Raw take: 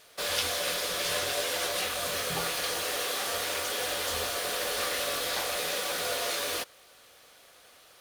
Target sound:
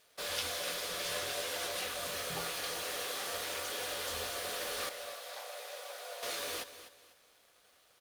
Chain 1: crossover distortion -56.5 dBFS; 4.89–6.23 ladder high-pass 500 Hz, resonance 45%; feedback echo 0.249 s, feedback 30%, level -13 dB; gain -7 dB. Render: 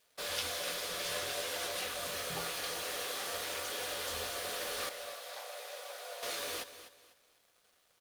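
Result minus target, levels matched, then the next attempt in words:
crossover distortion: distortion +6 dB
crossover distortion -63 dBFS; 4.89–6.23 ladder high-pass 500 Hz, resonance 45%; feedback echo 0.249 s, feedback 30%, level -13 dB; gain -7 dB

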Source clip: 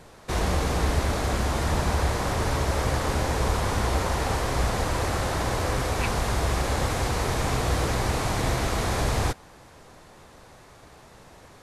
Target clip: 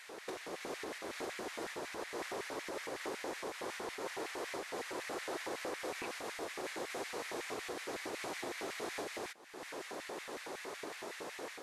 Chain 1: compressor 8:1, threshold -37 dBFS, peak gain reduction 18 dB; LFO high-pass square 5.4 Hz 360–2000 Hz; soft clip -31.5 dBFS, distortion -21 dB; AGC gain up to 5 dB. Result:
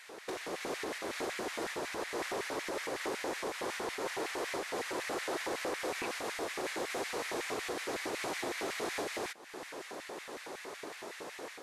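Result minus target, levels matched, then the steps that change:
compressor: peak gain reduction -5 dB
change: compressor 8:1, threshold -43 dBFS, peak gain reduction 23 dB

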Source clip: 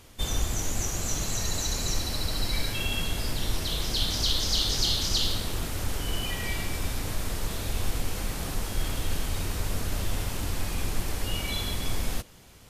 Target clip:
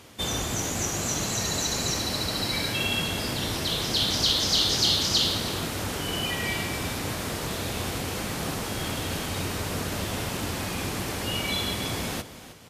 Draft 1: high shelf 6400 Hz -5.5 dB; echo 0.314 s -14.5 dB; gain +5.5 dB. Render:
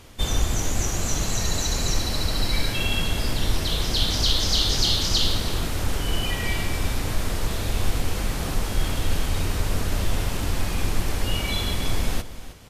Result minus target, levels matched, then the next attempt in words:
125 Hz band +4.5 dB
HPF 120 Hz 12 dB/oct; high shelf 6400 Hz -5.5 dB; echo 0.314 s -14.5 dB; gain +5.5 dB

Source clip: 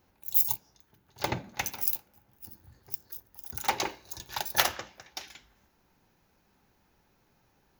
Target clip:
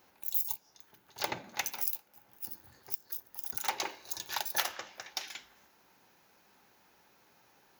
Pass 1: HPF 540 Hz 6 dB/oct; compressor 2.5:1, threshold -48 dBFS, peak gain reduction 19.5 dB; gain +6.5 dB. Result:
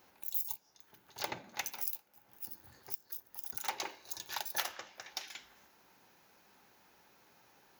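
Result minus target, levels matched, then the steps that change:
compressor: peak gain reduction +4 dB
change: compressor 2.5:1, threshold -41 dBFS, peak gain reduction 15.5 dB

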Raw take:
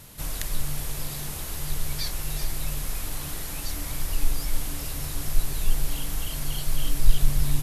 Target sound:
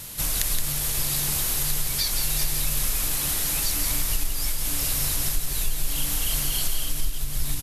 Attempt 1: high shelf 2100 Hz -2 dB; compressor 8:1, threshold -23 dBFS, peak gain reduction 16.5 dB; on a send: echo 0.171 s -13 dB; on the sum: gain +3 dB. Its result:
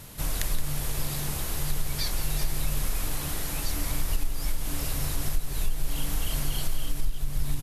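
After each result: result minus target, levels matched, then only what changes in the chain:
echo-to-direct -6 dB; 2000 Hz band +2.5 dB
change: echo 0.171 s -7 dB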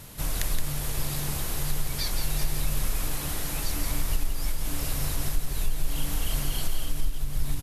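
2000 Hz band +2.5 dB
change: high shelf 2100 Hz +9 dB

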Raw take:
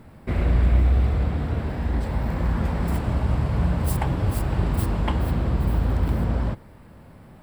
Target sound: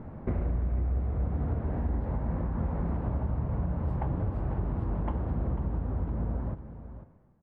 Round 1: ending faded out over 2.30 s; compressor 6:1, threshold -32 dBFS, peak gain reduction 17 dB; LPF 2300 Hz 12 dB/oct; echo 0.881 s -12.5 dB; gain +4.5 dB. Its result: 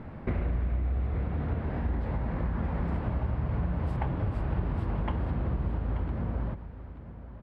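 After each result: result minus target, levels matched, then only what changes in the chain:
echo 0.386 s late; 2000 Hz band +7.0 dB
change: echo 0.495 s -12.5 dB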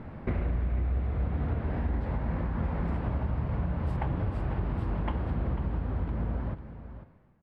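2000 Hz band +7.0 dB
change: LPF 1100 Hz 12 dB/oct

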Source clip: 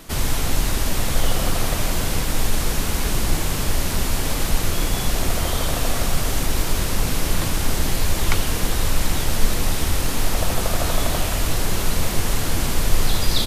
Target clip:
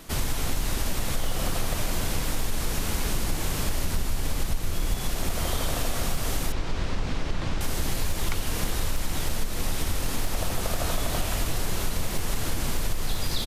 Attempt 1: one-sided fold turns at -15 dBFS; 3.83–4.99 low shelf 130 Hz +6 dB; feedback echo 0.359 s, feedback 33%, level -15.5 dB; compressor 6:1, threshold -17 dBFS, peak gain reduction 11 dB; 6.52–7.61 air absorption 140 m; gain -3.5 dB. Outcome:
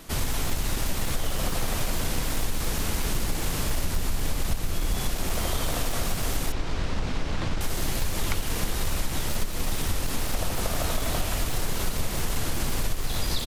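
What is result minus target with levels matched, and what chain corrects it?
one-sided fold: distortion +20 dB
one-sided fold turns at -8.5 dBFS; 3.83–4.99 low shelf 130 Hz +6 dB; feedback echo 0.359 s, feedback 33%, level -15.5 dB; compressor 6:1, threshold -17 dBFS, peak gain reduction 11 dB; 6.52–7.61 air absorption 140 m; gain -3.5 dB

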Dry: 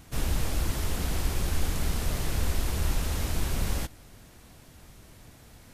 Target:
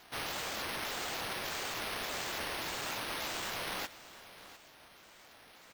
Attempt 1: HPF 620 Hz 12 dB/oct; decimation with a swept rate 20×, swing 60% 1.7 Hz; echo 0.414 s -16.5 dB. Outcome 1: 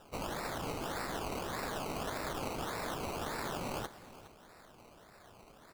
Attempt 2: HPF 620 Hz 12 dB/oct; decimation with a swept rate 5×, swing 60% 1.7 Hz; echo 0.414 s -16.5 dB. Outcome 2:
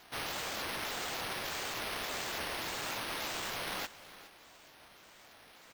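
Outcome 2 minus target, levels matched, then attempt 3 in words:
echo 0.288 s early
HPF 620 Hz 12 dB/oct; decimation with a swept rate 5×, swing 60% 1.7 Hz; echo 0.702 s -16.5 dB

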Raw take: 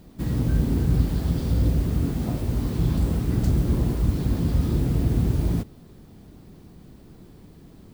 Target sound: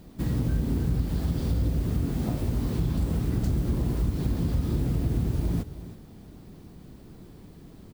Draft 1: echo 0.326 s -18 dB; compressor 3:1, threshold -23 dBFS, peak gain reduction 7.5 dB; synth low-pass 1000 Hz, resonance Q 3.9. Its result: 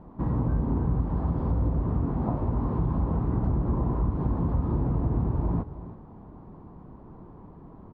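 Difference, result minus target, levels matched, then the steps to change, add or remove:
1000 Hz band +8.0 dB
remove: synth low-pass 1000 Hz, resonance Q 3.9

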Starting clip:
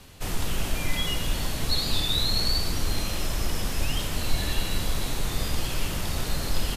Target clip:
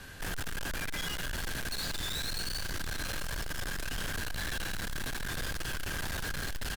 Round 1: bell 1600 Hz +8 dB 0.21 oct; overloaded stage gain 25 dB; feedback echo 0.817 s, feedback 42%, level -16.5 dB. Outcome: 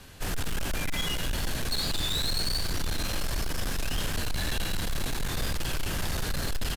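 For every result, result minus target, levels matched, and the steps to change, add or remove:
2000 Hz band -5.0 dB; overloaded stage: distortion -4 dB
change: bell 1600 Hz +20 dB 0.21 oct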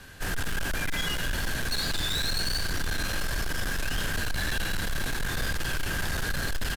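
overloaded stage: distortion -4 dB
change: overloaded stage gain 33.5 dB

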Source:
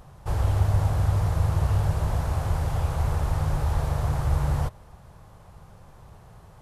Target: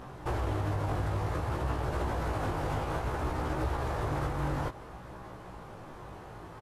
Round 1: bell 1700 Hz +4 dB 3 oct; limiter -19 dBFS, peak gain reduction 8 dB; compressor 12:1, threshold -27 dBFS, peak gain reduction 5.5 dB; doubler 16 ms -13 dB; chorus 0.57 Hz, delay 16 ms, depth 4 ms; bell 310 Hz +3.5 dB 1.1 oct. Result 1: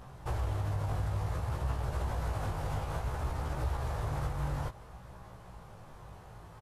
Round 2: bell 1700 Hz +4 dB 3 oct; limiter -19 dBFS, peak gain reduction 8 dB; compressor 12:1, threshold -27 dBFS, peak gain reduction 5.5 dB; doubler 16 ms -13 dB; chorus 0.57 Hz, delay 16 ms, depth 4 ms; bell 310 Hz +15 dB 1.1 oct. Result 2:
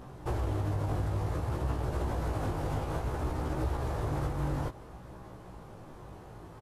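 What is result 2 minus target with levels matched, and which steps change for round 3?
2000 Hz band -5.0 dB
change: first bell 1700 Hz +10.5 dB 3 oct

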